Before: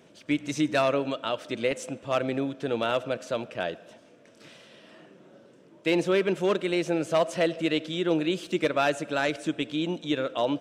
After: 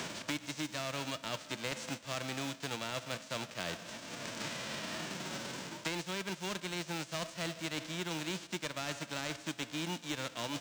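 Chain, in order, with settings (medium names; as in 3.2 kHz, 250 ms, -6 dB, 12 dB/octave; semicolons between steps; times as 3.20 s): formants flattened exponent 0.3; reverse; compression 6:1, threshold -36 dBFS, peak gain reduction 17 dB; reverse; low-pass 7.5 kHz 24 dB/octave; short-mantissa float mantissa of 2-bit; three bands compressed up and down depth 100%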